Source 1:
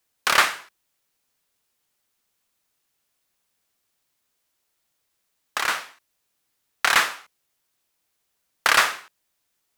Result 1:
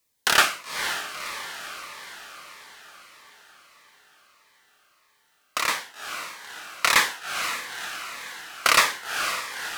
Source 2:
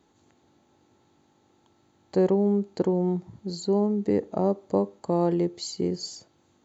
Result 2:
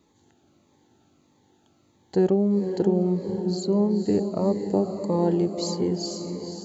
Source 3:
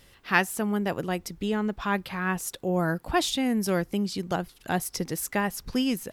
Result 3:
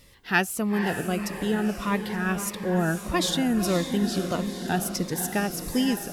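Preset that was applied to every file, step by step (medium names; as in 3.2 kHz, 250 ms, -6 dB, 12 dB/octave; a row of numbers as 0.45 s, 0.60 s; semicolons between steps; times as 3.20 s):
echo that smears into a reverb 505 ms, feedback 59%, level -8 dB; Shepard-style phaser falling 1.6 Hz; trim +2 dB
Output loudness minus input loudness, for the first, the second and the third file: -3.5 LU, +2.0 LU, +1.5 LU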